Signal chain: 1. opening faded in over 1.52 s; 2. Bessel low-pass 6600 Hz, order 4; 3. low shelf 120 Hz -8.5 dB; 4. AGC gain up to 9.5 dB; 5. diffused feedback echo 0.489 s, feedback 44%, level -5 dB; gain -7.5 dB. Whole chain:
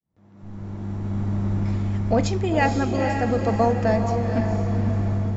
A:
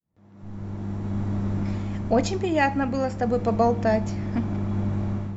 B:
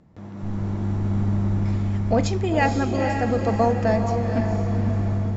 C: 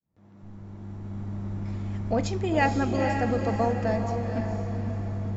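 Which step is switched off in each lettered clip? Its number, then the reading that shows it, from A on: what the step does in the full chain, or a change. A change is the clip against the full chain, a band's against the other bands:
5, echo-to-direct -4.0 dB to none; 1, momentary loudness spread change -4 LU; 4, momentary loudness spread change +4 LU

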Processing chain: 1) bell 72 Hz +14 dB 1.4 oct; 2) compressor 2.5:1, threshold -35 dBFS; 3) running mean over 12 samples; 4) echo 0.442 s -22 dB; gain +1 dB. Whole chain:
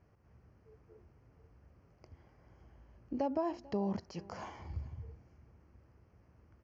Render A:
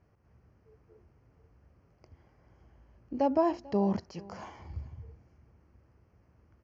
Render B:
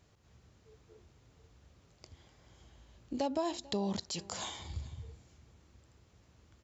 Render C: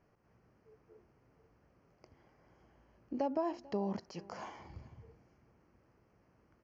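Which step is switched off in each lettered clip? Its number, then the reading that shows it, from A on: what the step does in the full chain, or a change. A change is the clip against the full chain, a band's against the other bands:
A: 2, mean gain reduction 1.5 dB; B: 3, 4 kHz band +16.0 dB; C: 1, 125 Hz band -5.0 dB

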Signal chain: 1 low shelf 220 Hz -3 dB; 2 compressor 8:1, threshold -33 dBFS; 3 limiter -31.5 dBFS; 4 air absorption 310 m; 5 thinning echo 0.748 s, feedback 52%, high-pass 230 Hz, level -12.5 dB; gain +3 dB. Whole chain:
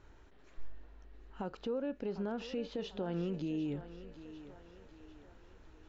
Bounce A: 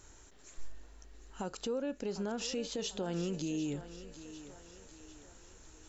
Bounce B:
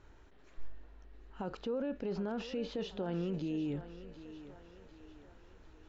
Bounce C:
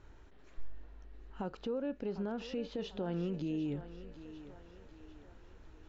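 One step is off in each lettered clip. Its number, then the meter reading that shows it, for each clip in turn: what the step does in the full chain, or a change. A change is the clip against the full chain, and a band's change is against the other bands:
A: 4, 4 kHz band +7.5 dB; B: 2, mean gain reduction 5.0 dB; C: 1, momentary loudness spread change -1 LU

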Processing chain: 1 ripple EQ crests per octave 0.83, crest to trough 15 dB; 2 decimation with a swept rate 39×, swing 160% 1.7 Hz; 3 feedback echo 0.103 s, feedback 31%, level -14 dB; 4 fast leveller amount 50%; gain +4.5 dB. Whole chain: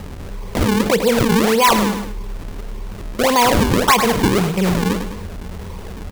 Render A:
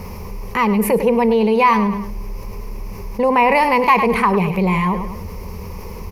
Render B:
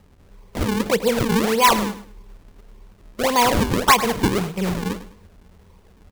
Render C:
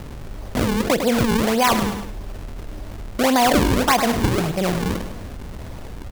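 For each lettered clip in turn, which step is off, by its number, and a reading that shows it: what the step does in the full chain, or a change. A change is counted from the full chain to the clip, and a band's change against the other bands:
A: 2, 4 kHz band -11.0 dB; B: 4, crest factor change +3.5 dB; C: 1, crest factor change +2.5 dB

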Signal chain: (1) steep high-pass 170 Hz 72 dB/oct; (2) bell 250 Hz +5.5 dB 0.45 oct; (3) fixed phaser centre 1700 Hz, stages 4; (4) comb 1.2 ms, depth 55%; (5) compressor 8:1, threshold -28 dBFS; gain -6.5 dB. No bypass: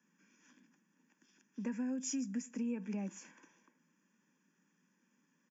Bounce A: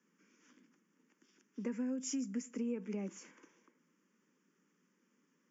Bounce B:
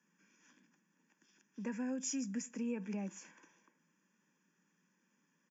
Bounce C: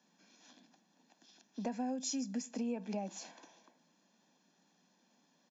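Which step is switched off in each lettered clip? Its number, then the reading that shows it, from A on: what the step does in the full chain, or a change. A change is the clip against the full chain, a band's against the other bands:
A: 4, 500 Hz band +5.5 dB; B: 2, 250 Hz band -3.5 dB; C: 3, 1 kHz band +9.5 dB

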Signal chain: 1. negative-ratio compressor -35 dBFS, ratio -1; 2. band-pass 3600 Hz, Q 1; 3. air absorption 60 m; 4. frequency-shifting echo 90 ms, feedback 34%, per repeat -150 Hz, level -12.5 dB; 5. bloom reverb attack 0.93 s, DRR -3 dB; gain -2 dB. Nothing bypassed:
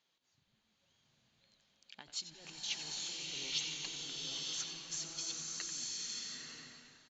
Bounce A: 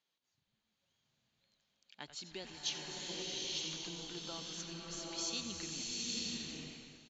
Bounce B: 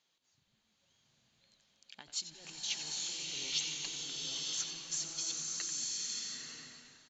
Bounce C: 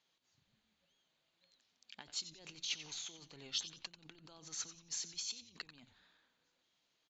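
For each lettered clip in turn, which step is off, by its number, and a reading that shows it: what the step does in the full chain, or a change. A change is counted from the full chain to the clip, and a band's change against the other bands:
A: 1, momentary loudness spread change -2 LU; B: 3, 4 kHz band +1.5 dB; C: 5, momentary loudness spread change +5 LU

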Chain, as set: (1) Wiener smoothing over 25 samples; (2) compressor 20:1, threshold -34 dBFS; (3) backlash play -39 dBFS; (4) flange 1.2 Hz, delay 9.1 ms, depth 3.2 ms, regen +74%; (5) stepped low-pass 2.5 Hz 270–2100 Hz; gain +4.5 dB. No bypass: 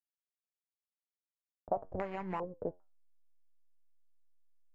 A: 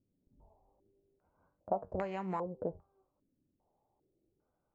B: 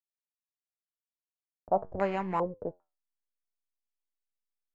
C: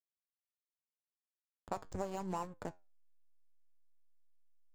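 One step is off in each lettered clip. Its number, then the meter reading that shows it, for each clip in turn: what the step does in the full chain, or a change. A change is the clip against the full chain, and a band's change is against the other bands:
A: 3, distortion -7 dB; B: 2, mean gain reduction 4.5 dB; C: 5, 500 Hz band -3.5 dB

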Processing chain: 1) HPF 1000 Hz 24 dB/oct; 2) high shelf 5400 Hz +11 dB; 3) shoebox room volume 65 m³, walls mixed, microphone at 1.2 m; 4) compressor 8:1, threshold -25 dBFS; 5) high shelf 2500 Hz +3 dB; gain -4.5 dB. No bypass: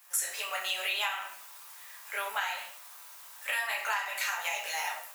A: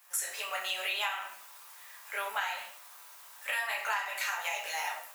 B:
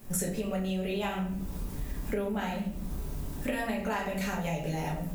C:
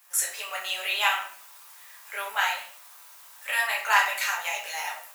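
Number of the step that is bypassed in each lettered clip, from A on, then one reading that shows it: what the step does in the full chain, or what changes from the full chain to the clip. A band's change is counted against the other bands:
5, 8 kHz band -2.0 dB; 1, 500 Hz band +16.5 dB; 4, mean gain reduction 2.5 dB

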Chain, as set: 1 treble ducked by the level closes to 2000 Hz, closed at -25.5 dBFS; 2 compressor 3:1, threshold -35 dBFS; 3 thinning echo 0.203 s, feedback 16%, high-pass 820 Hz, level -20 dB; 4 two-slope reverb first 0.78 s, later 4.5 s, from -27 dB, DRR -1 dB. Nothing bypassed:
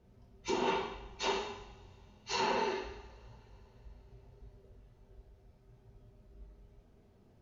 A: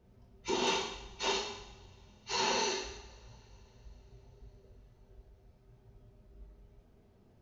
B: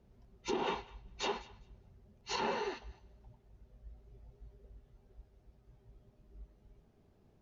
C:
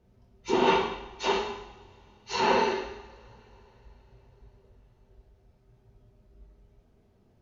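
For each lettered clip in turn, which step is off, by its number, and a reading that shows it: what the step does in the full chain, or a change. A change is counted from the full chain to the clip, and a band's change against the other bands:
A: 1, 4 kHz band +6.5 dB; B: 4, momentary loudness spread change +2 LU; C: 2, momentary loudness spread change -2 LU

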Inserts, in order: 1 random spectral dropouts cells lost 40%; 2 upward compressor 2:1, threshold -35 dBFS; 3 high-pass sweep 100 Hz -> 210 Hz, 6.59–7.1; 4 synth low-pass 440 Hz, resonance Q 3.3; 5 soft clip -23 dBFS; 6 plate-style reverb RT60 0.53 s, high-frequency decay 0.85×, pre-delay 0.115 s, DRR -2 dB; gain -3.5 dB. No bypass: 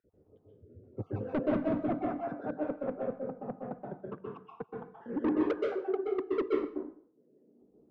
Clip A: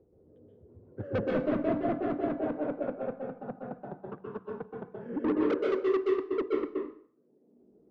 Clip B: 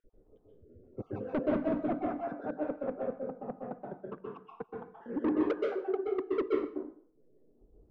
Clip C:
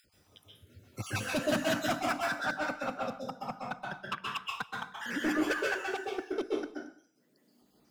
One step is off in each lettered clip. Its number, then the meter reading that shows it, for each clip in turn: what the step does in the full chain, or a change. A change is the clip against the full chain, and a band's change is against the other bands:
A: 1, 2 kHz band +2.0 dB; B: 3, 125 Hz band -4.0 dB; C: 4, 2 kHz band +17.0 dB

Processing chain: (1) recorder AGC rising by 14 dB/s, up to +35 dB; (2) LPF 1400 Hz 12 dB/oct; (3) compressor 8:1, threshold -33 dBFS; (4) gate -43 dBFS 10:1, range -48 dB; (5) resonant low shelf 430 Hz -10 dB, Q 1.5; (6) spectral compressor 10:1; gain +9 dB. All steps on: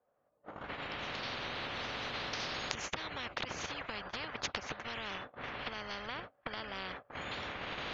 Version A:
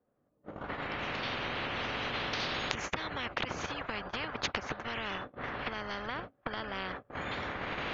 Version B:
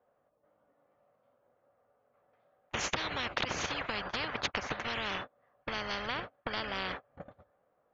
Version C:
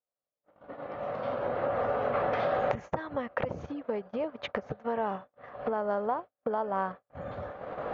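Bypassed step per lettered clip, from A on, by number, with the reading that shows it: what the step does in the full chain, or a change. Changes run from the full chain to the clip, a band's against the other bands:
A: 5, 4 kHz band -2.5 dB; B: 1, crest factor change -3.0 dB; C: 6, 4 kHz band -20.5 dB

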